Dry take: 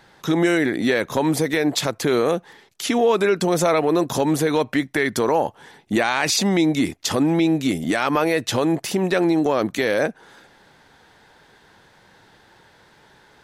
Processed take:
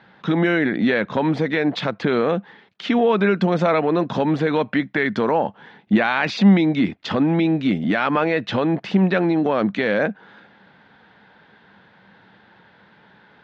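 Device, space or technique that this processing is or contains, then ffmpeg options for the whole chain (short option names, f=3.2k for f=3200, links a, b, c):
guitar cabinet: -af "highpass=90,equalizer=f=200:t=q:w=4:g=10,equalizer=f=370:t=q:w=4:g=-3,equalizer=f=1.5k:t=q:w=4:g=3,lowpass=f=3.6k:w=0.5412,lowpass=f=3.6k:w=1.3066"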